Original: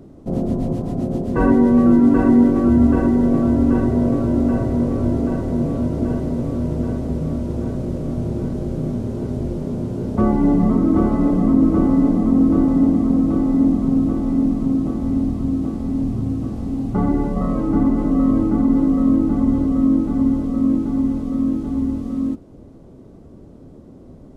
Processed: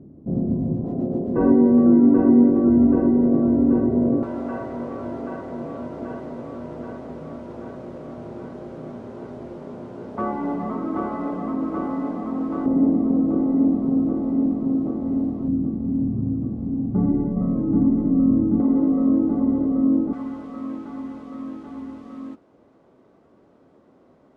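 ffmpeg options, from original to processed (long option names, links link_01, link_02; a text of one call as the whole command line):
ffmpeg -i in.wav -af "asetnsamples=nb_out_samples=441:pad=0,asendcmd='0.84 bandpass f 350;4.23 bandpass f 1200;12.66 bandpass f 450;15.48 bandpass f 190;18.6 bandpass f 450;20.13 bandpass f 1500',bandpass=frequency=180:width_type=q:width=0.84:csg=0" out.wav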